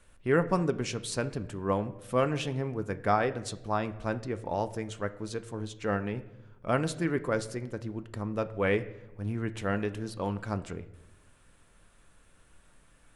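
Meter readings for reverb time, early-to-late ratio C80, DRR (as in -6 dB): 0.95 s, 18.0 dB, 10.0 dB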